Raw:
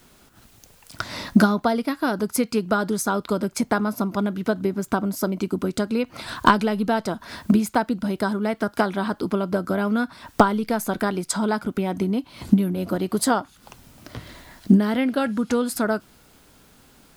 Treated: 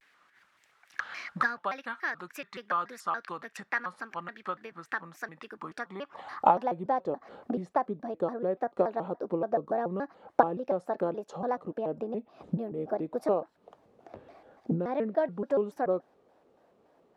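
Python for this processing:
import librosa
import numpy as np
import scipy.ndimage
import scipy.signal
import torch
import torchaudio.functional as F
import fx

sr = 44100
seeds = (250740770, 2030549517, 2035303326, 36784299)

y = fx.filter_sweep_bandpass(x, sr, from_hz=1700.0, to_hz=560.0, start_s=5.41, end_s=6.92, q=2.6)
y = fx.vibrato_shape(y, sr, shape='square', rate_hz=3.5, depth_cents=250.0)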